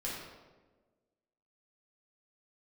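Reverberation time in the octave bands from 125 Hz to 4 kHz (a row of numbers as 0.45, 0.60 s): 1.4, 1.6, 1.5, 1.1, 0.95, 0.80 s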